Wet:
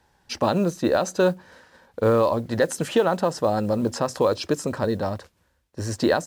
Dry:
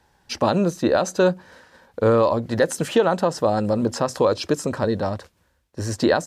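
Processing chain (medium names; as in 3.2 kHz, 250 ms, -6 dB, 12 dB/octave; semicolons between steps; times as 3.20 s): modulation noise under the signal 34 dB; trim -2 dB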